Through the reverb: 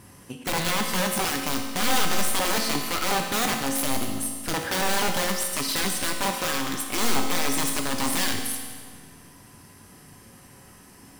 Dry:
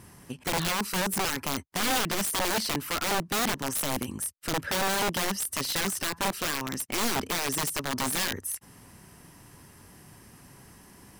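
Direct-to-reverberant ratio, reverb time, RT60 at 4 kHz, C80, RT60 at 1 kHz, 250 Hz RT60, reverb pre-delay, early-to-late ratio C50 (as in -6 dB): 2.0 dB, 1.7 s, 1.6 s, 5.5 dB, 1.7 s, 1.7 s, 4 ms, 4.0 dB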